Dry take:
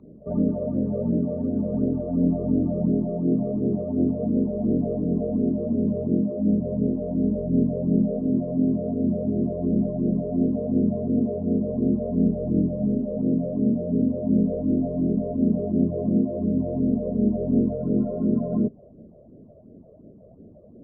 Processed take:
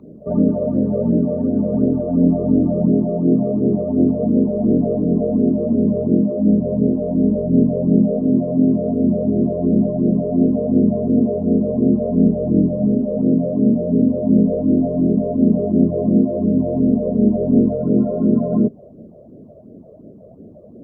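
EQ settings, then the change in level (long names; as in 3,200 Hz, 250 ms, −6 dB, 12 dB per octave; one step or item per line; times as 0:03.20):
low-shelf EQ 73 Hz −10.5 dB
+8.0 dB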